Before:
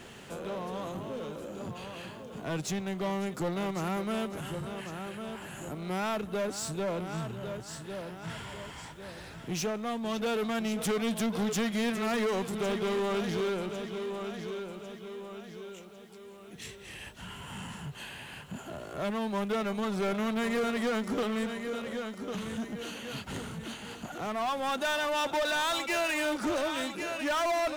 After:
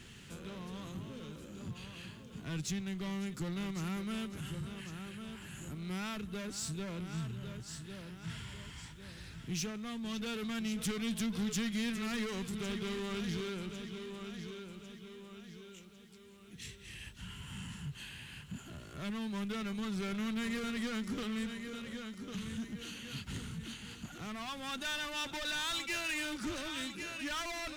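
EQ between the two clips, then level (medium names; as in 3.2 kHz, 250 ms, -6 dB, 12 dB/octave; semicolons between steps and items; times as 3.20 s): amplifier tone stack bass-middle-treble 6-0-2; treble shelf 9.3 kHz -7.5 dB; +14.0 dB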